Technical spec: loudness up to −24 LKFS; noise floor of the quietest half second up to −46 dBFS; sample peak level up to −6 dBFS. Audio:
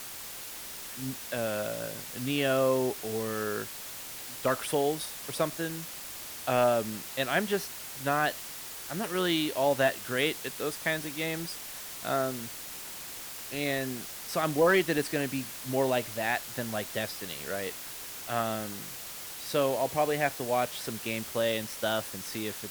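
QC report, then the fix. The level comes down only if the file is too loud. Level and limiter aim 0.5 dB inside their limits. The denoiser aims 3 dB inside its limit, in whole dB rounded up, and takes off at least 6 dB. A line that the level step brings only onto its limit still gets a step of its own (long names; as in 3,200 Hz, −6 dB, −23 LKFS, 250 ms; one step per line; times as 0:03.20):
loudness −31.0 LKFS: in spec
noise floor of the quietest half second −42 dBFS: out of spec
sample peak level −14.5 dBFS: in spec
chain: broadband denoise 7 dB, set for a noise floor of −42 dBFS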